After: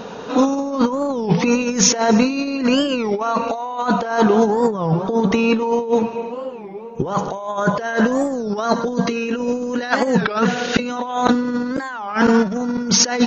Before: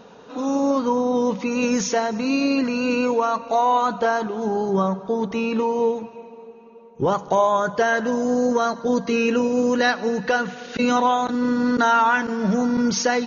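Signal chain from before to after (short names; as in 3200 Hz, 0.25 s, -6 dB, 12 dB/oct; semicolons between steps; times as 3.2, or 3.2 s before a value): negative-ratio compressor -25 dBFS, ratio -0.5; record warp 33 1/3 rpm, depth 250 cents; gain +8 dB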